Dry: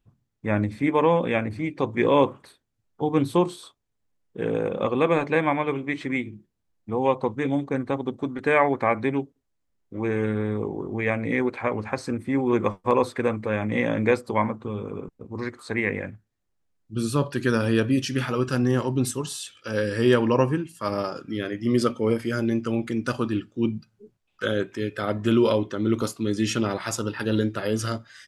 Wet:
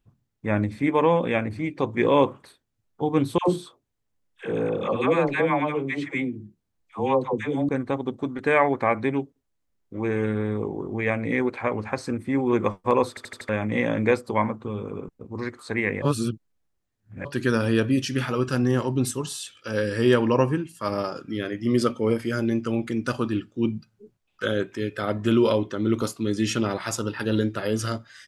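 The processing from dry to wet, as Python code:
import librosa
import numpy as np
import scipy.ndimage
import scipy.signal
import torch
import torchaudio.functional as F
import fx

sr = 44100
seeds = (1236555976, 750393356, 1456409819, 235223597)

y = fx.dispersion(x, sr, late='lows', ms=105.0, hz=720.0, at=(3.38, 7.69))
y = fx.edit(y, sr, fx.stutter_over(start_s=13.09, slice_s=0.08, count=5),
    fx.reverse_span(start_s=16.02, length_s=1.23), tone=tone)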